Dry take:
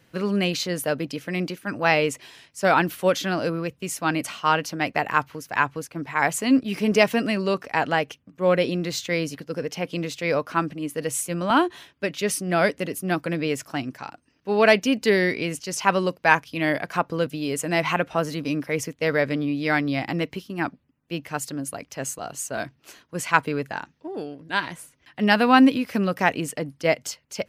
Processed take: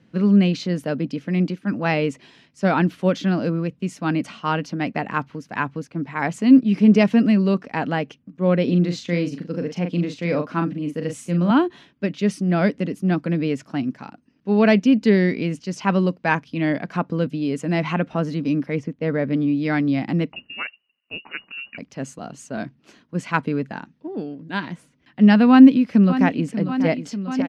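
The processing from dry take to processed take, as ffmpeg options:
-filter_complex "[0:a]asettb=1/sr,asplit=3[s0][s1][s2];[s0]atrim=end=8.644[s3];[s1]atrim=start=8.64:end=11.51,asetpts=PTS-STARTPTS,afade=t=in:d=0.004:c=qsin,afade=t=out:st=2.866:d=0.004:c=qsin,asplit=2[s4][s5];[s5]adelay=40,volume=0.473[s6];[s4][s6]amix=inputs=2:normalize=0,atrim=end_sample=126567[s7];[s2]atrim=start=11.506[s8];[s3][s7]acrossfade=d=0.004:c1=hsin:c2=qsin[s9];[s9][s8]acrossfade=d=0.004:c1=qsin:c2=hsin,asettb=1/sr,asplit=3[s10][s11][s12];[s10]atrim=end=18.794[s13];[s11]atrim=start=18.79:end=19.33,asetpts=PTS-STARTPTS,afade=t=in:d=0.004:c=qsin,afade=t=out:st=0.536:d=0.004:c=qsin,lowpass=f=1600:p=1[s14];[s12]atrim=start=19.326[s15];[s13][s14]acrossfade=d=0.004:c1=hsin:c2=qsin[s16];[s16][s15]acrossfade=d=0.004:c1=qsin:c2=hsin,asettb=1/sr,asplit=3[s17][s18][s19];[s17]atrim=end=20.324[s20];[s18]atrim=start=20.32:end=21.78,asetpts=PTS-STARTPTS,afade=t=in:d=0.004:c=qsin,afade=t=out:st=1.456:d=0.004:c=qsin,lowpass=f=2600:t=q:w=0.5098,lowpass=f=2600:t=q:w=0.6013,lowpass=f=2600:t=q:w=0.9,lowpass=f=2600:t=q:w=2.563,afreqshift=-3000[s21];[s19]atrim=start=21.776[s22];[s20][s21]acrossfade=d=0.004:c1=hsin:c2=qsin[s23];[s23][s22]acrossfade=d=0.004:c1=qsin:c2=hsin,asplit=2[s24][s25];[s25]afade=t=in:st=25.5:d=0.01,afade=t=out:st=26.55:d=0.01,aecho=0:1:590|1180|1770|2360|2950|3540|4130|4720|5310|5900|6490|7080:0.266073|0.212858|0.170286|0.136229|0.108983|0.0871866|0.0697493|0.0557994|0.0446396|0.0357116|0.0285693|0.0228555[s26];[s24][s26]amix=inputs=2:normalize=0,lowpass=5300,equalizer=f=210:t=o:w=1.3:g=14.5,volume=0.631"

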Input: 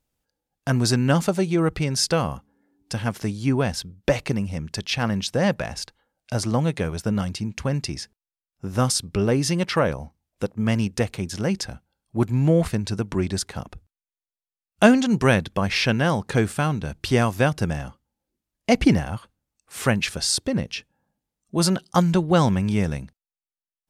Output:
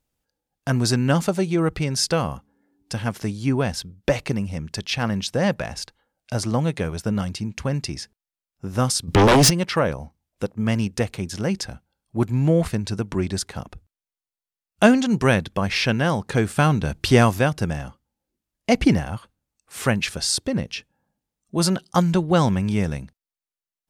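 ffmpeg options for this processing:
-filter_complex "[0:a]asplit=3[s0][s1][s2];[s0]afade=t=out:st=9.07:d=0.02[s3];[s1]aeval=exprs='0.316*sin(PI/2*3.55*val(0)/0.316)':c=same,afade=t=in:st=9.07:d=0.02,afade=t=out:st=9.49:d=0.02[s4];[s2]afade=t=in:st=9.49:d=0.02[s5];[s3][s4][s5]amix=inputs=3:normalize=0,asettb=1/sr,asplit=3[s6][s7][s8];[s6]atrim=end=16.574[s9];[s7]atrim=start=16.57:end=17.39,asetpts=PTS-STARTPTS,afade=t=in:d=0.004:c=qsin,afade=t=out:st=0.816:d=0.004:c=qsin,acontrast=31[s10];[s8]atrim=start=17.386[s11];[s9][s10]acrossfade=d=0.004:c1=hsin:c2=qsin[s12];[s12][s11]acrossfade=d=0.004:c1=qsin:c2=hsin"

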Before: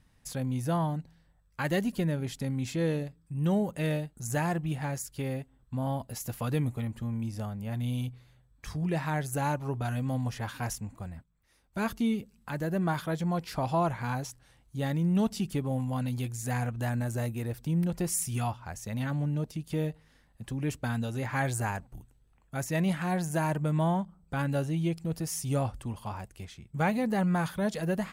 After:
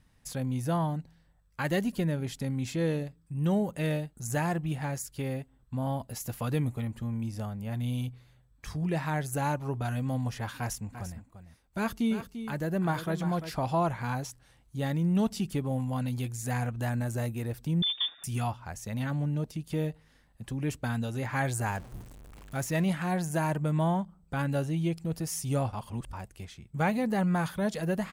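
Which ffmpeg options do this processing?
-filter_complex "[0:a]asplit=3[s0][s1][s2];[s0]afade=t=out:st=10.92:d=0.02[s3];[s1]aecho=1:1:344:0.299,afade=t=in:st=10.92:d=0.02,afade=t=out:st=13.5:d=0.02[s4];[s2]afade=t=in:st=13.5:d=0.02[s5];[s3][s4][s5]amix=inputs=3:normalize=0,asettb=1/sr,asplit=3[s6][s7][s8];[s6]atrim=end=17.824[s9];[s7]atrim=start=17.82:end=18.24,asetpts=PTS-STARTPTS,afade=t=in:d=0.004:c=qsin,afade=t=out:st=0.416:d=0.004:c=qsin,lowpass=f=3100:t=q:w=0.5098,lowpass=f=3100:t=q:w=0.6013,lowpass=f=3100:t=q:w=0.9,lowpass=f=3100:t=q:w=2.563,afreqshift=-3700[s10];[s8]atrim=start=18.236[s11];[s9][s10]acrossfade=d=0.004:c1=hsin:c2=qsin[s12];[s12][s11]acrossfade=d=0.004:c1=qsin:c2=hsin,asettb=1/sr,asplit=3[s13][s14][s15];[s13]atrim=end=21.664[s16];[s14]atrim=start=21.66:end=22.84,asetpts=PTS-STARTPTS,afade=t=in:d=0.004:c=qsin,afade=t=out:st=1.176:d=0.004:c=qsin,aeval=exprs='val(0)+0.5*0.00631*sgn(val(0))':c=same[s17];[s15]atrim=start=22.836[s18];[s16][s17]acrossfade=d=0.004:c1=hsin:c2=qsin[s19];[s19][s18]acrossfade=d=0.004:c1=qsin:c2=hsin,asplit=3[s20][s21][s22];[s20]atrim=end=25.732[s23];[s21]atrim=start=25.728:end=26.132,asetpts=PTS-STARTPTS,areverse[s24];[s22]atrim=start=26.128[s25];[s23][s24]acrossfade=d=0.004:c1=hsin:c2=hsin[s26];[s26][s25]acrossfade=d=0.004:c1=hsin:c2=hsin"

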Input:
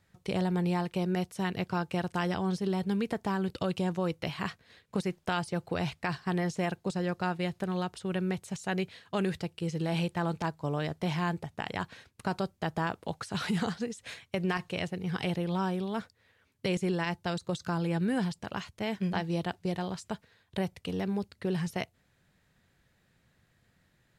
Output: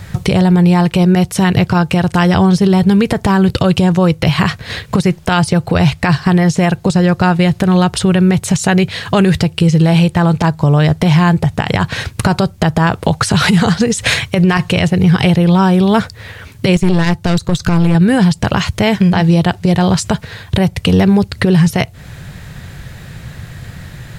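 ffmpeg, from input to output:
-filter_complex "[0:a]asettb=1/sr,asplit=3[s0][s1][s2];[s0]atrim=end=16.764[s3];[s1]atrim=start=16.76:end=17.95,asetpts=PTS-STARTPTS,afade=t=in:d=0.004:c=qsin,afade=t=out:st=1.186:d=0.004:c=qsin,aeval=exprs='(tanh(22.4*val(0)+0.75)-tanh(0.75))/22.4':c=same[s4];[s2]atrim=start=17.946[s5];[s3][s4]acrossfade=d=0.004:c1=hsin:c2=qsin[s6];[s6][s5]acrossfade=d=0.004:c1=qsin:c2=hsin,lowshelf=f=180:t=q:w=1.5:g=6.5,acompressor=threshold=0.01:ratio=10,alimiter=level_in=53.1:limit=0.891:release=50:level=0:latency=1,volume=0.891"

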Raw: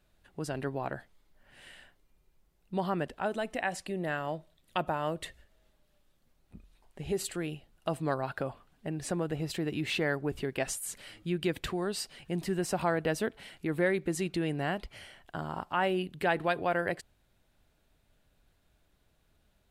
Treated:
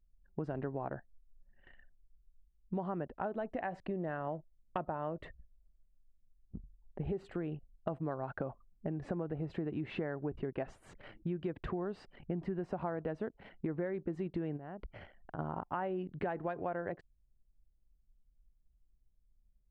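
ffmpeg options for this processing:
-filter_complex "[0:a]asplit=3[s0][s1][s2];[s0]afade=t=out:st=14.56:d=0.02[s3];[s1]acompressor=threshold=0.00708:ratio=8:attack=3.2:release=140:knee=1:detection=peak,afade=t=in:st=14.56:d=0.02,afade=t=out:st=15.38:d=0.02[s4];[s2]afade=t=in:st=15.38:d=0.02[s5];[s3][s4][s5]amix=inputs=3:normalize=0,anlmdn=0.01,lowpass=1200,acompressor=threshold=0.01:ratio=6,volume=1.88"

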